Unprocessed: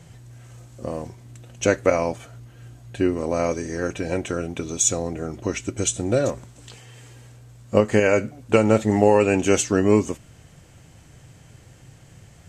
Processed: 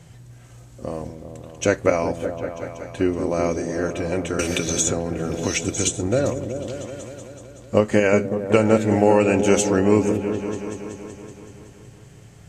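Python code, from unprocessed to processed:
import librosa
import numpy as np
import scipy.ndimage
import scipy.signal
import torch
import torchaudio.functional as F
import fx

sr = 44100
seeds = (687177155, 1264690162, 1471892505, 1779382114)

y = fx.echo_opening(x, sr, ms=188, hz=400, octaves=1, feedback_pct=70, wet_db=-6)
y = fx.band_squash(y, sr, depth_pct=100, at=(4.39, 5.96))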